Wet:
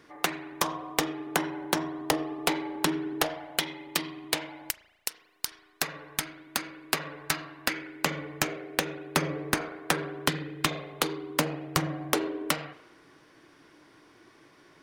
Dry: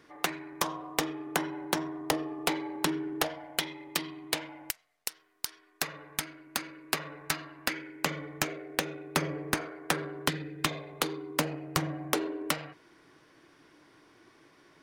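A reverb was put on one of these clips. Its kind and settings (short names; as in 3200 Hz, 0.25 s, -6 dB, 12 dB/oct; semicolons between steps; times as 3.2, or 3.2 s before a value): spring tank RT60 1 s, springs 36 ms, chirp 55 ms, DRR 16 dB; gain +2.5 dB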